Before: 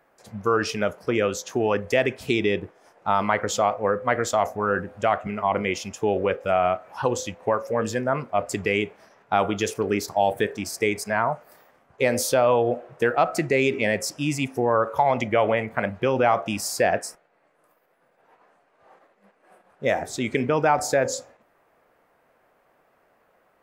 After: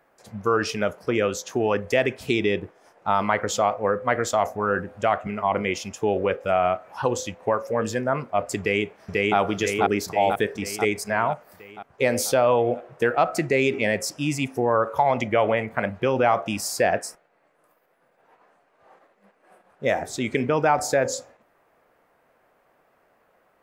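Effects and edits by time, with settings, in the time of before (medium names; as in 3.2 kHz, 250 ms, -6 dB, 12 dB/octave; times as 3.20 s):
8.59–9.37 s: echo throw 490 ms, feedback 60%, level 0 dB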